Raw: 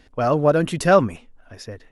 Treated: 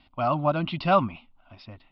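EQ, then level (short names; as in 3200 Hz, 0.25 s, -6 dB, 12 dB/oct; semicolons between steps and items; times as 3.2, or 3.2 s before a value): steep low-pass 5500 Hz 72 dB/oct; low shelf 120 Hz -10.5 dB; fixed phaser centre 1700 Hz, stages 6; 0.0 dB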